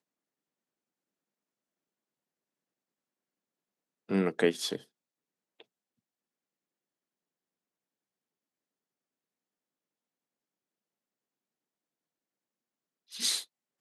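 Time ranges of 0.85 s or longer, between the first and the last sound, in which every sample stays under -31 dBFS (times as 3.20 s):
4.76–13.17 s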